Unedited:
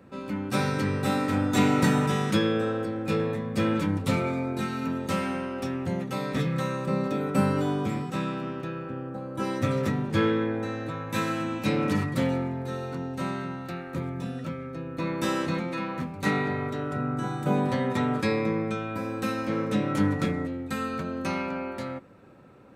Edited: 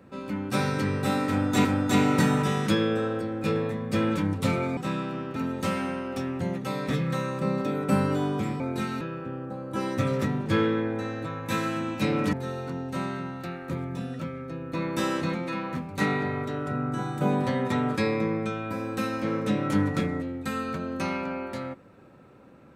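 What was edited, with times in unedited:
1.29–1.65 loop, 2 plays
4.41–4.82 swap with 8.06–8.65
11.97–12.58 cut

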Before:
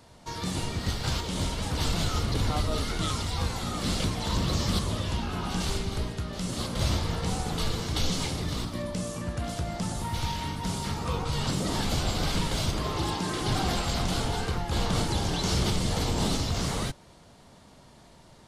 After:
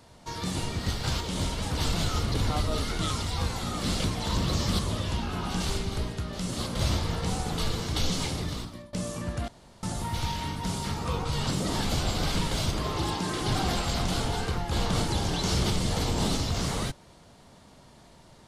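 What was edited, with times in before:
8.4–8.93 fade out, to -23 dB
9.48–9.83 room tone

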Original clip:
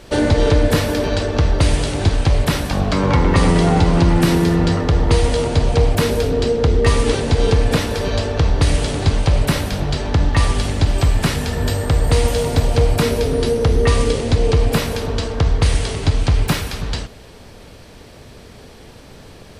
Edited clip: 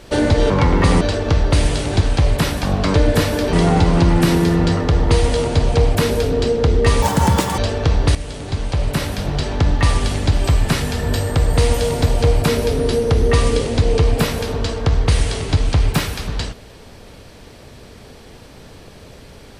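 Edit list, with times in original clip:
0.5–1.09 swap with 3.02–3.53
7.02–8.12 speed 196%
8.69–9.97 fade in linear, from -12.5 dB

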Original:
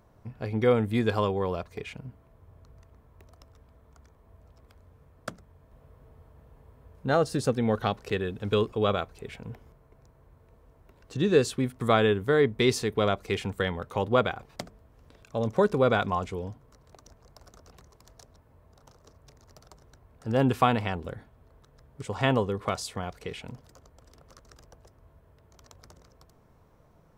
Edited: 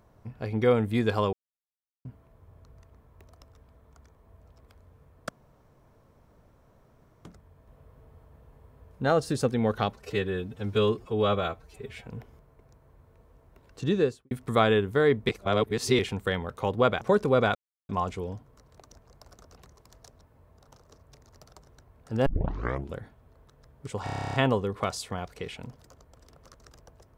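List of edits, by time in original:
1.33–2.05 mute
5.29 insert room tone 1.96 s
7.98–9.4 stretch 1.5×
11.19–11.64 studio fade out
12.62–13.32 reverse
14.34–15.5 cut
16.04 insert silence 0.34 s
20.41 tape start 0.68 s
22.19 stutter 0.03 s, 11 plays

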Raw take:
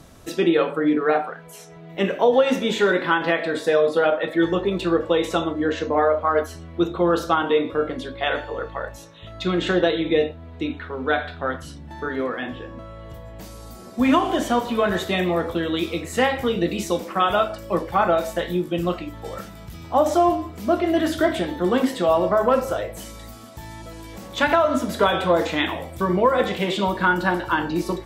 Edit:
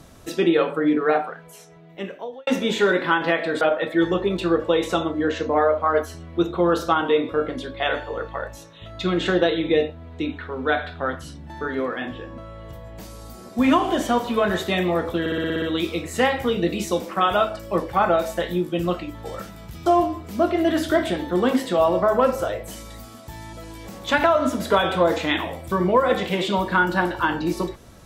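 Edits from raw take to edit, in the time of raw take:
1.18–2.47 fade out
3.61–4.02 cut
15.61 stutter 0.06 s, 8 plays
19.85–20.15 cut

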